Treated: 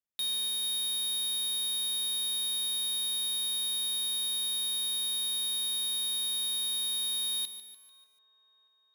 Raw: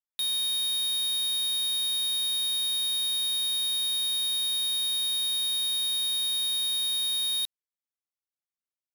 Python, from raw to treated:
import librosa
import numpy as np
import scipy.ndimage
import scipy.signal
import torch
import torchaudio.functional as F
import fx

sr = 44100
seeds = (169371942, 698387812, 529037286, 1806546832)

y = fx.low_shelf(x, sr, hz=420.0, db=5.5)
y = fx.echo_wet_bandpass(y, sr, ms=611, feedback_pct=69, hz=820.0, wet_db=-22.5)
y = fx.echo_crushed(y, sr, ms=147, feedback_pct=55, bits=9, wet_db=-12.0)
y = F.gain(torch.from_numpy(y), -3.5).numpy()